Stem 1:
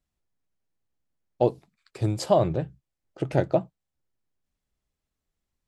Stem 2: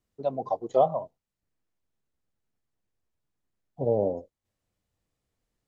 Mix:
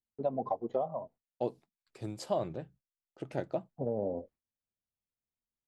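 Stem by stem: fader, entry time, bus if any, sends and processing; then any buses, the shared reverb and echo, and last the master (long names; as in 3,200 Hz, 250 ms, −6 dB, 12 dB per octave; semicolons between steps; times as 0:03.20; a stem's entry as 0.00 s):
−11.0 dB, 0.00 s, no send, low-shelf EQ 130 Hz −11 dB
+1.0 dB, 0.00 s, no send, low-pass filter 2,300 Hz 12 dB per octave; downward compressor 6 to 1, threshold −27 dBFS, peak gain reduction 11 dB; automatic ducking −7 dB, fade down 1.80 s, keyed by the first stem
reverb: not used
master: noise gate with hold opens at −55 dBFS; parametric band 230 Hz +6 dB 0.33 octaves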